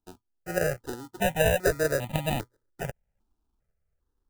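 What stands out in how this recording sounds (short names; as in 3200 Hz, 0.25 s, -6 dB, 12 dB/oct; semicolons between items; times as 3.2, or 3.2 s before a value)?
aliases and images of a low sample rate 1100 Hz, jitter 0%; random-step tremolo; notches that jump at a steady rate 2.5 Hz 540–1500 Hz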